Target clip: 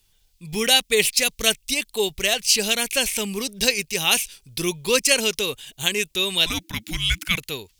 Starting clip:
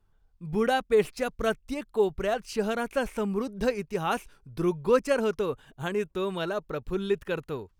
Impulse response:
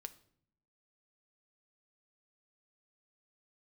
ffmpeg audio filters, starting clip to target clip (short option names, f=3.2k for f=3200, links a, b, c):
-filter_complex "[0:a]aexciter=amount=10.7:drive=5.9:freq=2.1k,asettb=1/sr,asplit=3[a][b][c];[a]atrim=end=6.464[d];[b]atrim=start=6.46:end=7.38,asetpts=PTS-STARTPTS,afade=t=in:d=0.004:c=qsin,afade=t=out:st=0.916:d=0.004:c=qsin,afreqshift=-340[e];[c]atrim=start=7.376[f];[d][e]acrossfade=d=0.004:c1=hsin:c2=qsin[g];[g][f]acrossfade=d=0.004:c1=qsin:c2=hsin"